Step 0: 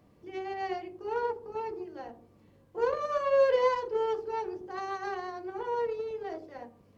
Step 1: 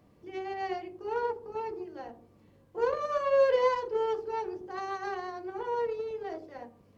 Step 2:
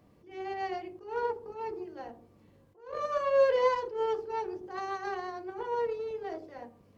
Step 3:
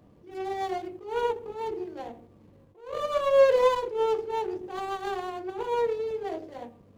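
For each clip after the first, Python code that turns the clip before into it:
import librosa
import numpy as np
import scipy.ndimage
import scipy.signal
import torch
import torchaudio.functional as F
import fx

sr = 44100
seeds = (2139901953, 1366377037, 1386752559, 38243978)

y1 = x
y2 = fx.attack_slew(y1, sr, db_per_s=130.0)
y3 = scipy.ndimage.median_filter(y2, 25, mode='constant')
y3 = F.gain(torch.from_numpy(y3), 5.5).numpy()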